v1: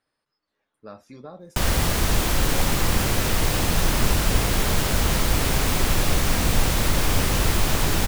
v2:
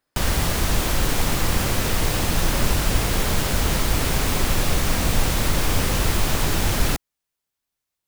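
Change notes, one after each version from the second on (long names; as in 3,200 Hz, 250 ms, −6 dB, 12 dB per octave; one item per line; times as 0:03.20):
background: entry −1.40 s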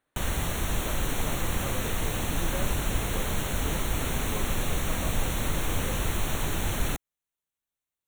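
background −7.5 dB
master: add Butterworth band-reject 4,900 Hz, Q 3.1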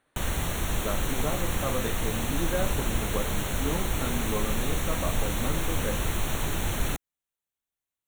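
speech +8.0 dB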